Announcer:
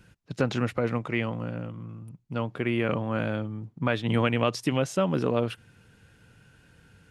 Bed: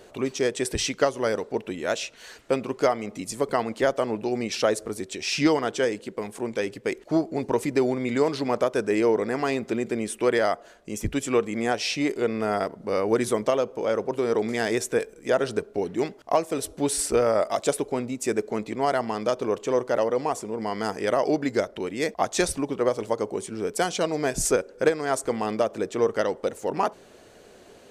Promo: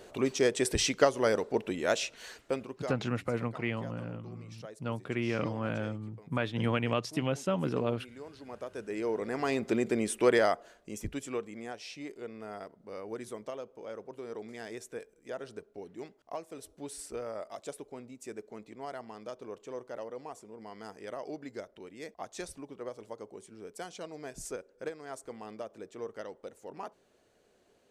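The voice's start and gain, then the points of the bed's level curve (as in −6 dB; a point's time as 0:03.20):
2.50 s, −5.5 dB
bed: 0:02.26 −2 dB
0:03.19 −24.5 dB
0:08.20 −24.5 dB
0:09.69 −2 dB
0:10.35 −2 dB
0:11.76 −17.5 dB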